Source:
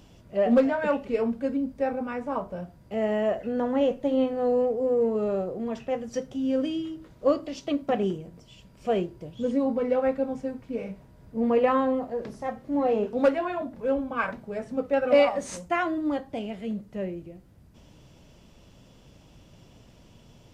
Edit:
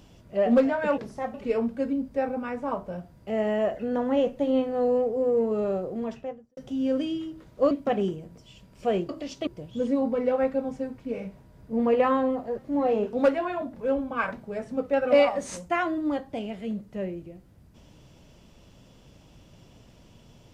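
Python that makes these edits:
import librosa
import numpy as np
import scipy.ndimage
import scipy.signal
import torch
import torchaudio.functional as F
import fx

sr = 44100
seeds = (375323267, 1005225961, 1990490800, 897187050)

y = fx.studio_fade_out(x, sr, start_s=5.63, length_s=0.58)
y = fx.edit(y, sr, fx.move(start_s=7.35, length_s=0.38, to_s=9.11),
    fx.move(start_s=12.22, length_s=0.36, to_s=0.98), tone=tone)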